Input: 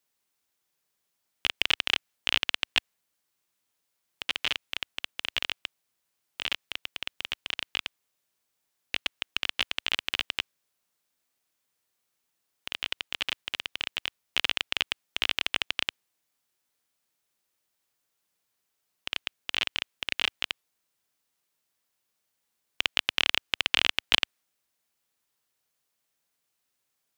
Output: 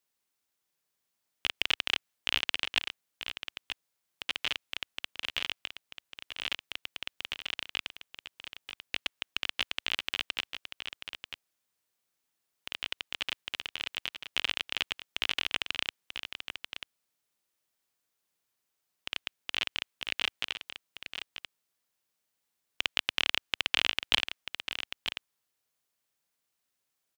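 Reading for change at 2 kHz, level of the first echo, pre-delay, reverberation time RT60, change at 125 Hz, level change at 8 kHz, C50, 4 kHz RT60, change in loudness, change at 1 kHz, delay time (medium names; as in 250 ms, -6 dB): -3.0 dB, -9.0 dB, no reverb, no reverb, -3.0 dB, -3.0 dB, no reverb, no reverb, -4.0 dB, -3.0 dB, 939 ms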